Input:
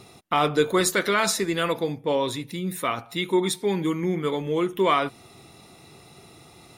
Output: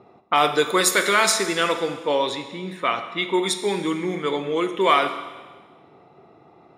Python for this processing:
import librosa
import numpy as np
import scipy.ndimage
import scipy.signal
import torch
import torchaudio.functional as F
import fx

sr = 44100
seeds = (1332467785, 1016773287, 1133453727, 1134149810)

y = fx.env_lowpass(x, sr, base_hz=860.0, full_db=-18.0)
y = fx.highpass(y, sr, hz=540.0, slope=6)
y = fx.rev_schroeder(y, sr, rt60_s=1.4, comb_ms=28, drr_db=8.5)
y = y * 10.0 ** (5.0 / 20.0)